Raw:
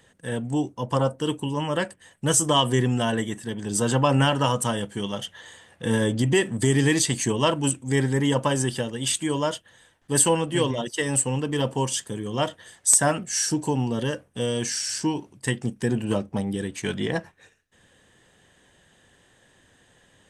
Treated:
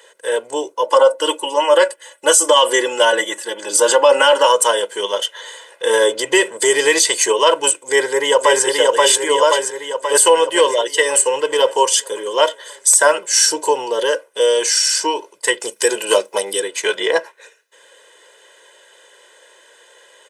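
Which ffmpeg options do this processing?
-filter_complex "[0:a]asettb=1/sr,asplit=3[a][b][c];[a]atrim=end=0.844[d];[b]atrim=start=0.84:end=4.47,asetpts=PTS-STARTPTS,afade=t=in:d=0.004:c=qsin,afade=t=out:st=3.626:d=0.004:c=qsin,aecho=1:1:3.5:0.69,atrim=end_sample=160083[e];[c]atrim=start=4.466[f];[d][e]acrossfade=d=0.004:c1=hsin:c2=qsin[g];[g][f]acrossfade=d=0.004:c1=qsin:c2=hsin,asplit=2[h][i];[i]afade=t=in:st=7.77:d=0.01,afade=t=out:st=8.64:d=0.01,aecho=0:1:530|1060|1590|2120|2650|3180|3710|4240|4770:0.794328|0.476597|0.285958|0.171575|0.102945|0.061767|0.0370602|0.0222361|0.0133417[j];[h][j]amix=inputs=2:normalize=0,asettb=1/sr,asplit=3[k][l][m];[k]atrim=end=15.604[n];[l]atrim=start=15.6:end=16.6,asetpts=PTS-STARTPTS,afade=t=in:d=0.004:c=qsin,afade=t=out:st=0.996:d=0.004:c=qsin,highshelf=f=3k:g=12[o];[m]atrim=start=16.596[p];[n][o]acrossfade=d=0.004:c1=hsin:c2=qsin[q];[q][p]acrossfade=d=0.004:c1=qsin:c2=hsin,highpass=f=420:w=0.5412,highpass=f=420:w=1.3066,aecho=1:1:2:0.75,alimiter=level_in=11.5dB:limit=-1dB:release=50:level=0:latency=1,volume=-1dB"

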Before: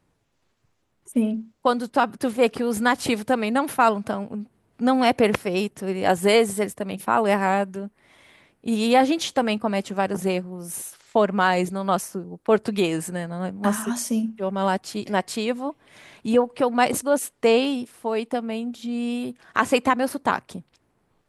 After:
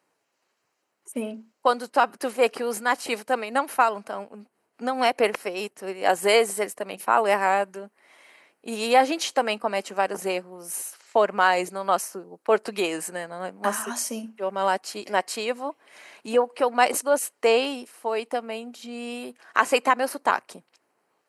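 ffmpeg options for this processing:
-filter_complex "[0:a]asettb=1/sr,asplit=3[a][b][c];[a]atrim=end=2.744[d];[b]atrim=start=2.74:end=6.13,asetpts=PTS-STARTPTS,afade=t=in:d=0.004:c=qsin,afade=t=out:st=3.386:d=0.004:c=qsin,tremolo=f=4.8:d=0.51[e];[c]atrim=start=6.126[f];[d][e]acrossfade=d=0.004:c1=hsin:c2=qsin[g];[g][f]acrossfade=d=0.004:c1=qsin:c2=hsin,highpass=450,bandreject=f=3.5k:w=7.4,volume=1dB"

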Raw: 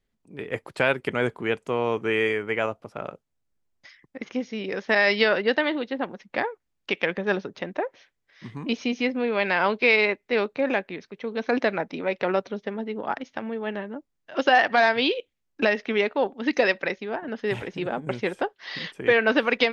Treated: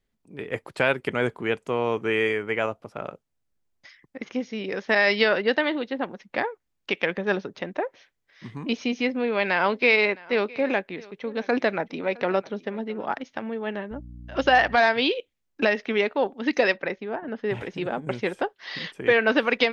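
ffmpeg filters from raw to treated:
-filter_complex "[0:a]asettb=1/sr,asplit=3[a][b][c];[a]atrim=end=9.054[d];[b]atrim=start=9.05:end=13.17,asetpts=PTS-STARTPTS,afade=t=in:d=0.004:c=qsin,afade=t=out:st=4.116:d=0.004:c=qsin,aecho=1:1:663:0.075,atrim=end_sample=181692[e];[c]atrim=start=13.166[f];[d][e]acrossfade=d=0.004:c1=hsin:c2=qsin[g];[g][f]acrossfade=d=0.004:c1=qsin:c2=hsin,asettb=1/sr,asplit=3[h][i][j];[h]atrim=end=13.914[k];[i]atrim=start=13.91:end=14.76,asetpts=PTS-STARTPTS,afade=t=in:d=0.004:c=qsin,afade=t=out:st=0.846:d=0.004:c=qsin,aeval=exprs='val(0)+0.01*(sin(2*PI*60*n/s)+sin(2*PI*2*60*n/s)/2+sin(2*PI*3*60*n/s)/3+sin(2*PI*4*60*n/s)/4+sin(2*PI*5*60*n/s)/5)':c=same[l];[j]atrim=start=14.756[m];[k][l]acrossfade=d=0.004:c1=hsin:c2=qsin[n];[n][m]acrossfade=d=0.004:c1=qsin:c2=hsin,asettb=1/sr,asplit=3[o][p][q];[o]atrim=end=16.764[r];[p]atrim=start=16.76:end=17.61,asetpts=PTS-STARTPTS,afade=t=in:d=0.004:c=qsin,afade=t=out:st=0.846:d=0.004:c=qsin,lowpass=f=1.9k:p=1[s];[q]atrim=start=17.606[t];[r][s]acrossfade=d=0.004:c1=hsin:c2=qsin[u];[u][t]acrossfade=d=0.004:c1=qsin:c2=hsin"

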